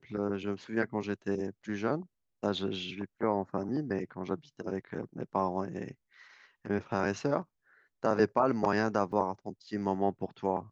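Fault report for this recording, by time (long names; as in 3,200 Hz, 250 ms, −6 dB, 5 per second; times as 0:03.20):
0:09.12: drop-out 3.2 ms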